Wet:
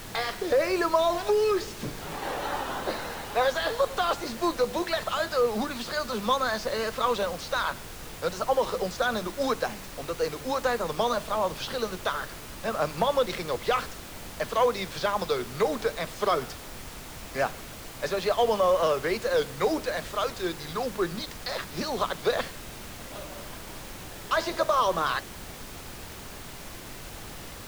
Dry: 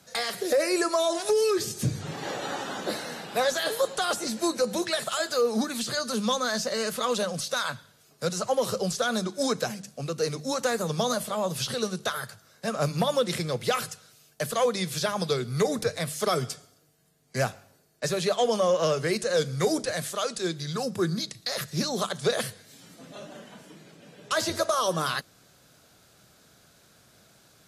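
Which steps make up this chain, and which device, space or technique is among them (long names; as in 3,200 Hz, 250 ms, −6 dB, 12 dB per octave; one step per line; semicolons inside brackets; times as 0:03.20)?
horn gramophone (band-pass filter 270–3,700 Hz; parametric band 970 Hz +6 dB 0.55 octaves; tape wow and flutter; pink noise bed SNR 12 dB)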